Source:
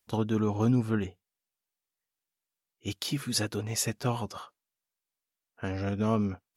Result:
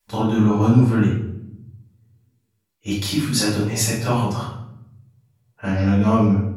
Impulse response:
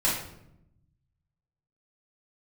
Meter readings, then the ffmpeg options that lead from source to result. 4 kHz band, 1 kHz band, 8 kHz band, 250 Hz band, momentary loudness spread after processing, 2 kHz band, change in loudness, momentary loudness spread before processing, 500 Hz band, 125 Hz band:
+8.5 dB, +11.0 dB, +9.0 dB, +12.0 dB, 16 LU, +10.0 dB, +11.0 dB, 13 LU, +8.5 dB, +12.5 dB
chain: -filter_complex "[0:a]bandreject=f=60:t=h:w=6,bandreject=f=120:t=h:w=6[a];[1:a]atrim=start_sample=2205[b];[a][b]afir=irnorm=-1:irlink=0,volume=-1dB"

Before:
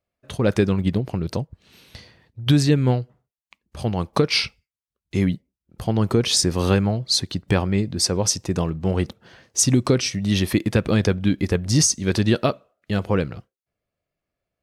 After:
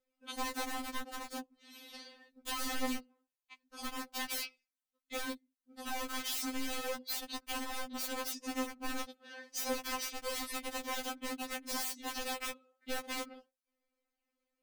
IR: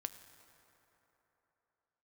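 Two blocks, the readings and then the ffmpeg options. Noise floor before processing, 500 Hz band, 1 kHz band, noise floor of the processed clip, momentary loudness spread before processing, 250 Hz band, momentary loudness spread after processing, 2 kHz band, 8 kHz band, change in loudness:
under -85 dBFS, -20.0 dB, -8.5 dB, under -85 dBFS, 11 LU, -21.5 dB, 12 LU, -10.0 dB, -17.0 dB, -17.5 dB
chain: -af "aeval=exprs='(mod(7.5*val(0)+1,2)-1)/7.5':c=same,acompressor=threshold=-36dB:ratio=4,afftfilt=real='re*3.46*eq(mod(b,12),0)':imag='im*3.46*eq(mod(b,12),0)':win_size=2048:overlap=0.75"

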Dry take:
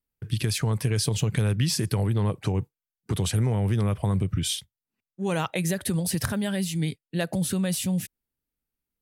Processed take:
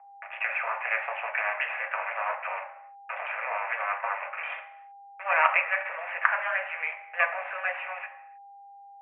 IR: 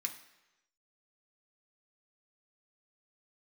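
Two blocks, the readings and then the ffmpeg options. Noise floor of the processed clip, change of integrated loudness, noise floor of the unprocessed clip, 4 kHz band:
-49 dBFS, -2.5 dB, under -85 dBFS, -15.0 dB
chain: -filter_complex "[0:a]equalizer=f=1.3k:w=0.51:g=7.5,acrusher=bits=3:dc=4:mix=0:aa=0.000001,aeval=exprs='val(0)+0.00355*sin(2*PI*800*n/s)':c=same,asuperpass=centerf=1200:order=20:qfactor=0.58[a];[1:a]atrim=start_sample=2205,afade=t=out:st=0.37:d=0.01,atrim=end_sample=16758[b];[a][b]afir=irnorm=-1:irlink=0,volume=7dB"

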